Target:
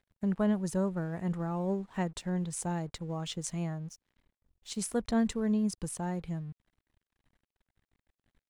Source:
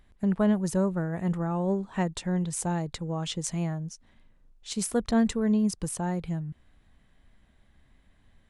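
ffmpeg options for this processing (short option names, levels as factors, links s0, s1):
-af "aeval=exprs='sgn(val(0))*max(abs(val(0))-0.00168,0)':c=same,volume=0.596"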